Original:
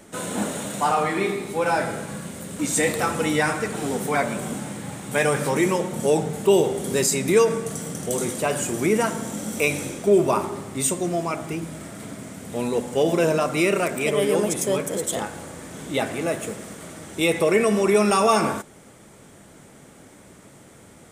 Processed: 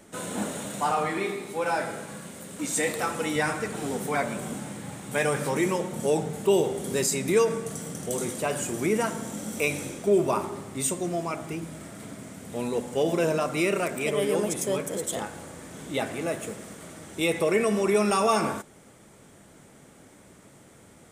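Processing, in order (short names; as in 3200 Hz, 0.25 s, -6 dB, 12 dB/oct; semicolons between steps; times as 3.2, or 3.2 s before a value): 1.18–3.36 low shelf 150 Hz -9 dB; gain -4.5 dB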